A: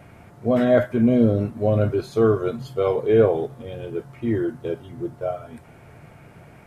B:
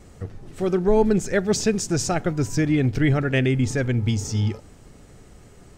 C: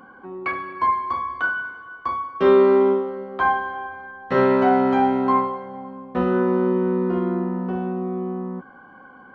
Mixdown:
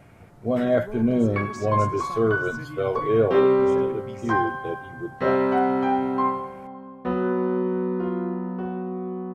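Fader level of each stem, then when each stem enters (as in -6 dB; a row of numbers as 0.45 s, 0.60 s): -4.0 dB, -19.0 dB, -4.0 dB; 0.00 s, 0.00 s, 0.90 s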